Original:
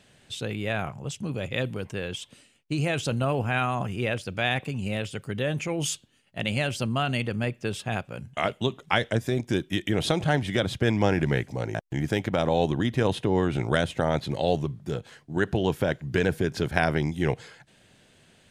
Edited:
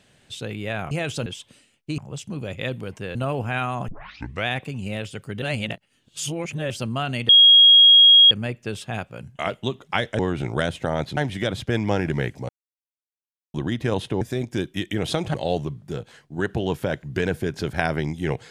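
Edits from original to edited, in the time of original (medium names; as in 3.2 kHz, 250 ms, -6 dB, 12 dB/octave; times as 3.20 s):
0.91–2.08 s: swap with 2.80–3.15 s
3.88 s: tape start 0.59 s
5.42–6.70 s: reverse
7.29 s: add tone 3.28 kHz -8 dBFS 1.02 s
9.17–10.30 s: swap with 13.34–14.32 s
11.62–12.67 s: mute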